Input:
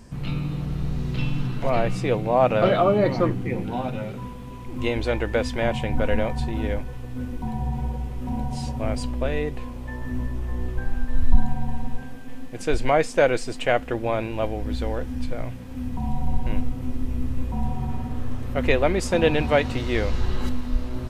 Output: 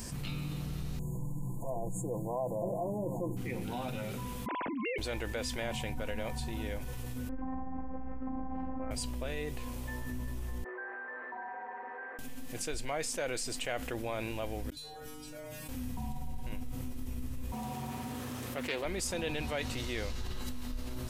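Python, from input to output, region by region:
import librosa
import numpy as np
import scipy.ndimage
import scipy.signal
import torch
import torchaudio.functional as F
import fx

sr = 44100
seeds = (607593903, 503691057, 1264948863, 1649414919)

y = fx.chain(x, sr, fx.brickwall_bandstop(low_hz=1100.0, high_hz=6500.0),
    fx.comb(ms=6.0, depth=0.47), at=(0.99, 3.37))
y = fx.chain(y, sr, fx.sine_speech(),
    fx.env_flatten(amount_pct=70), at=(4.46, 4.98))
y = fx.chain(y, sr, fx.steep_lowpass(hz=1800.0, slope=36),
    fx.robotise(hz=261.0),
    fx.env_flatten(amount_pct=100), at=(7.29, 8.91))
y = fx.chain(y, sr, fx.cheby1_bandpass(low_hz=370.0, high_hz=1900.0, order=4),
    fx.peak_eq(hz=580.0, db=-8.0, octaves=2.3), at=(10.64, 12.19))
y = fx.chain(y, sr, fx.highpass(hz=44.0, slope=6),
    fx.over_compress(threshold_db=-35.0, ratio=-0.5),
    fx.stiff_resonator(f0_hz=150.0, decay_s=0.83, stiffness=0.002), at=(14.7, 15.69))
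y = fx.chain(y, sr, fx.highpass(hz=120.0, slope=12),
    fx.low_shelf(hz=210.0, db=-6.0),
    fx.doppler_dist(depth_ms=0.22), at=(17.52, 18.85))
y = scipy.signal.lfilter([1.0, -0.8], [1.0], y)
y = fx.env_flatten(y, sr, amount_pct=70)
y = F.gain(torch.from_numpy(y), -6.0).numpy()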